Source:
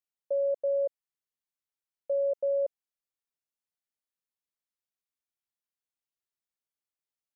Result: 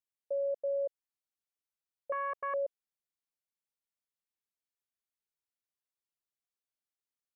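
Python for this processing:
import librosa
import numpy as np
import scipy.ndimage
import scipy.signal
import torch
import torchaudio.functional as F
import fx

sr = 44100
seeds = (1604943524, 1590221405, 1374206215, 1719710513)

y = fx.self_delay(x, sr, depth_ms=0.43, at=(2.12, 2.54))
y = y * librosa.db_to_amplitude(-5.0)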